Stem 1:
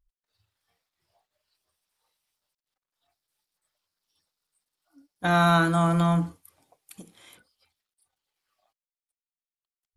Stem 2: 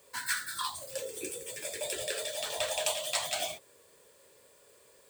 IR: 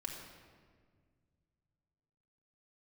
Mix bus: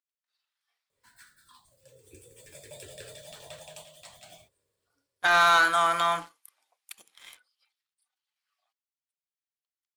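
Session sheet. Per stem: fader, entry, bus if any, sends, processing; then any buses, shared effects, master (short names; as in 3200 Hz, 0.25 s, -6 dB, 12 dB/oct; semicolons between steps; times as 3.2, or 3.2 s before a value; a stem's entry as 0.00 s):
+2.0 dB, 0.00 s, no send, HPF 1200 Hz 12 dB/oct; high shelf 7900 Hz -9.5 dB; sample leveller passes 2
1.78 s -23.5 dB -> 2.47 s -11.5 dB -> 3.31 s -11.5 dB -> 3.96 s -18.5 dB, 0.90 s, no send, octaver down 2 oct, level -2 dB; low shelf 270 Hz +9.5 dB; auto duck -11 dB, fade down 0.80 s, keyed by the first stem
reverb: off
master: dry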